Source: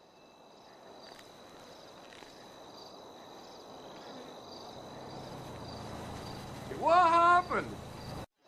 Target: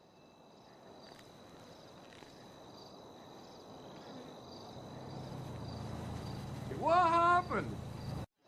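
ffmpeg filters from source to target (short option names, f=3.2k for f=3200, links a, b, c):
-af "equalizer=f=120:w=0.57:g=9,volume=-5dB"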